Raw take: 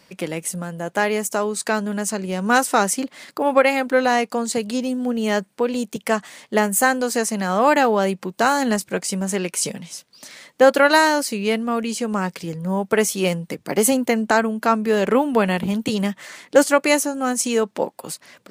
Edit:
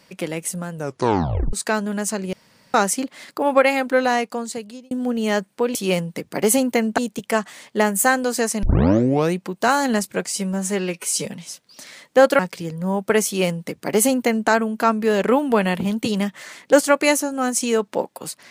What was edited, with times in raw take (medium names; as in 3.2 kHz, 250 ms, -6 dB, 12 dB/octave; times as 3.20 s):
0.73 s: tape stop 0.80 s
2.33–2.74 s: room tone
3.73–4.91 s: fade out equal-power
7.40 s: tape start 0.75 s
9.03–9.69 s: stretch 1.5×
10.83–12.22 s: delete
13.09–14.32 s: copy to 5.75 s